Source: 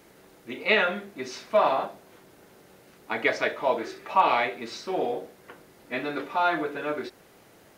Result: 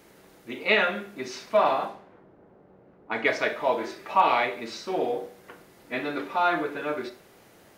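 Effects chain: 1.64–3.25 low-pass opened by the level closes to 820 Hz, open at -23.5 dBFS; Schroeder reverb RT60 0.45 s, combs from 31 ms, DRR 11 dB

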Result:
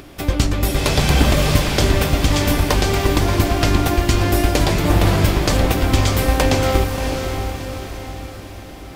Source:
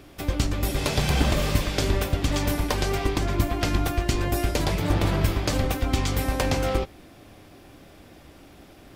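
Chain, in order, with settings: upward compressor, threshold -45 dBFS; diffused feedback echo 0.63 s, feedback 48%, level -6 dB; gain +7 dB

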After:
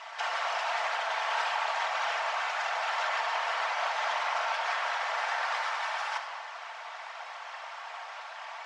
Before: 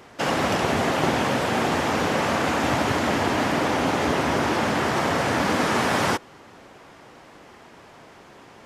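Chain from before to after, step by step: steep high-pass 690 Hz 72 dB/oct; high shelf 4300 Hz +5.5 dB; negative-ratio compressor -32 dBFS, ratio -1; whisperiser; air absorption 140 m; shoebox room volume 2200 m³, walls mixed, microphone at 1.6 m

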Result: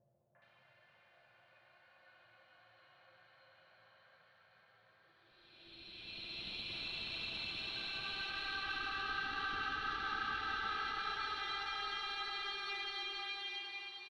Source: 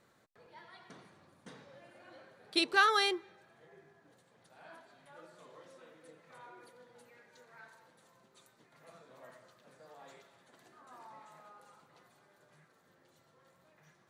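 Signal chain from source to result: passive tone stack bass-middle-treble 10-0-10; Paulstretch 10×, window 0.50 s, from 1.86; added harmonics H 4 -18 dB, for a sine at -20 dBFS; compressor, threshold -36 dBFS, peak gain reduction 8 dB; air absorption 300 m; three bands offset in time lows, mids, highs 0.35/0.42 s, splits 550/1800 Hz; gain +5 dB

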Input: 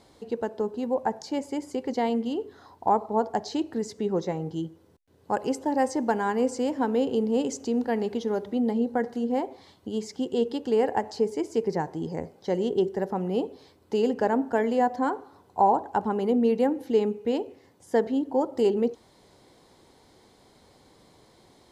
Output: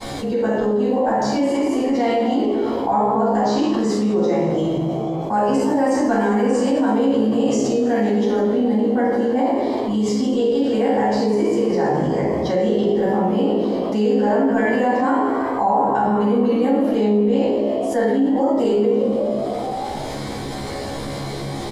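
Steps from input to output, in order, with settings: expander -53 dBFS; resonator 69 Hz, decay 0.28 s, harmonics all, mix 90%; frequency-shifting echo 0.163 s, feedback 61%, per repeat +60 Hz, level -14 dB; shoebox room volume 380 m³, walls mixed, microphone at 8.2 m; fast leveller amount 70%; gain -8 dB

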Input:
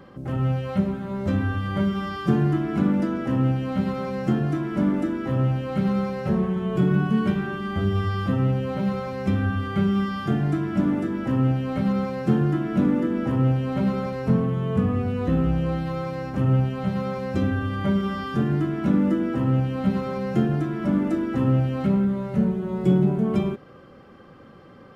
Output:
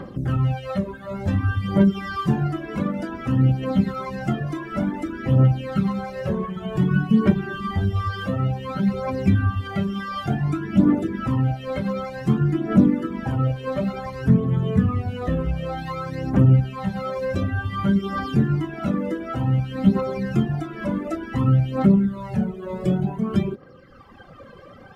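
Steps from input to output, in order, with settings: reverb removal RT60 1.2 s; in parallel at +1 dB: compressor, threshold -34 dBFS, peak gain reduction 18 dB; on the sum: phaser 0.55 Hz, delay 2 ms, feedback 58%; gain -1 dB

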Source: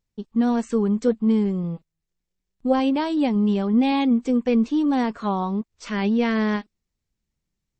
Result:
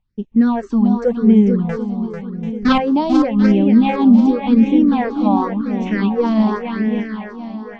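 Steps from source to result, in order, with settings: 1.69–2.78 half-waves squared off; LPF 5500 Hz 24 dB/oct; high shelf 3300 Hz -9.5 dB; on a send: swung echo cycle 0.739 s, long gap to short 1.5:1, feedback 39%, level -6.5 dB; on the sum: phaser stages 6, 0.9 Hz, lowest notch 110–1300 Hz; gain +8 dB

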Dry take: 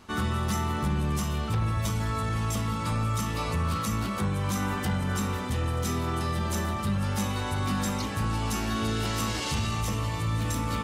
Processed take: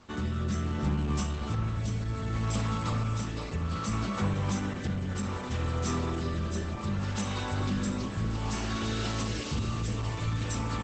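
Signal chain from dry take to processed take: rotary speaker horn 0.65 Hz; on a send: feedback echo 0.289 s, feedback 52%, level -19 dB; on the sum: Opus 12 kbps 48000 Hz

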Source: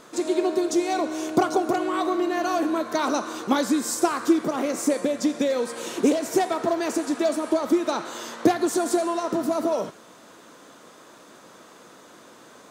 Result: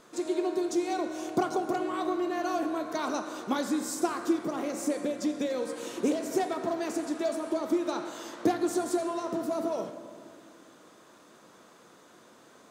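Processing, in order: low shelf 130 Hz +3.5 dB; on a send: reverb RT60 2.3 s, pre-delay 3 ms, DRR 9 dB; on the sum: gain -8 dB

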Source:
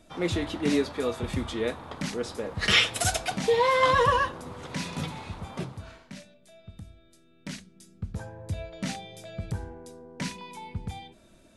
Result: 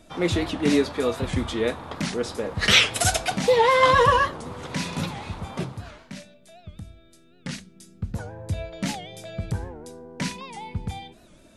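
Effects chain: record warp 78 rpm, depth 160 cents; gain +4.5 dB

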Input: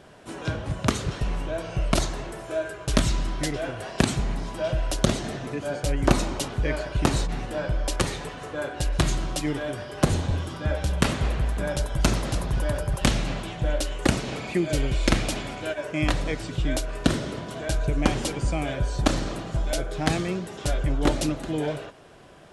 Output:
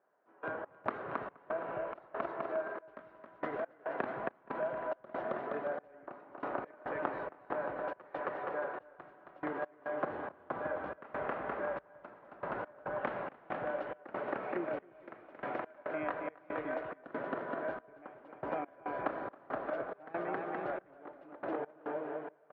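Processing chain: LPF 1600 Hz 24 dB/oct; bouncing-ball echo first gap 0.27 s, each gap 0.75×, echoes 5; step gate "..x.xx.xx.xxx." 70 bpm -24 dB; HPF 510 Hz 12 dB/oct; compressor 2:1, threshold -42 dBFS, peak gain reduction 12 dB; gain +2.5 dB

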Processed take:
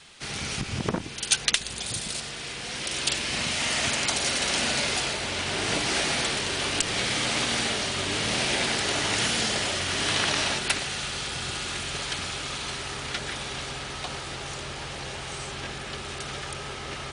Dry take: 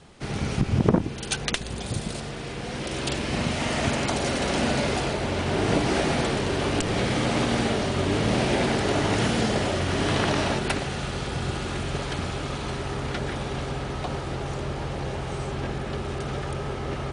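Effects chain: band noise 450–4000 Hz -59 dBFS; tilt shelf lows -9 dB, about 1300 Hz; gain -1 dB

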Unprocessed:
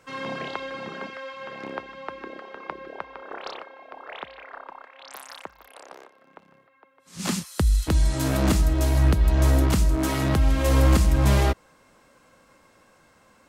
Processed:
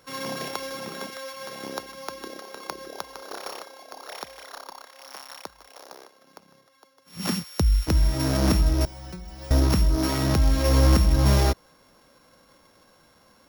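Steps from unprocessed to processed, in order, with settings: sample sorter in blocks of 8 samples; 8.85–9.51 metallic resonator 180 Hz, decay 0.32 s, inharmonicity 0.002

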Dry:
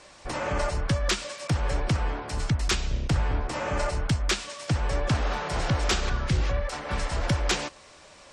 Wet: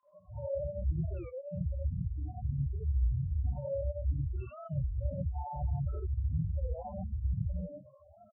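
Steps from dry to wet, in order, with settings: octaver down 1 oct, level +2 dB; HPF 66 Hz 24 dB/oct; compressor 5:1, threshold -27 dBFS, peak gain reduction 9.5 dB; loudest bins only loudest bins 1; three bands offset in time mids, lows, highs 30/260 ms, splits 1300/5900 Hz; non-linear reverb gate 0.11 s rising, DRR -6 dB; record warp 33 1/3 rpm, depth 250 cents

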